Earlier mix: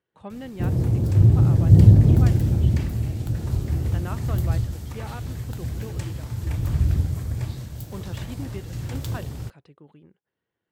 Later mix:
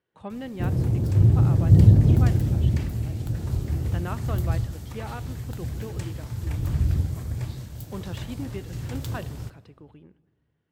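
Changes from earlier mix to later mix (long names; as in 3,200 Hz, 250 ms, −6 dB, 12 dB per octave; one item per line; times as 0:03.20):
speech: send on
background: send −7.0 dB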